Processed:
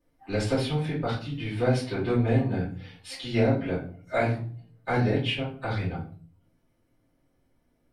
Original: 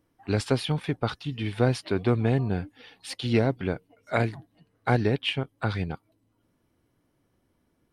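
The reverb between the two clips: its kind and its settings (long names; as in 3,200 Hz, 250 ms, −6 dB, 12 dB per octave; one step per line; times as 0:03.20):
rectangular room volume 33 cubic metres, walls mixed, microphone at 2 metres
level −12 dB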